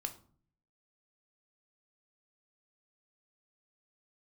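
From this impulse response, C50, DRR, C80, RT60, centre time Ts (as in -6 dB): 14.0 dB, 6.5 dB, 18.5 dB, 0.50 s, 7 ms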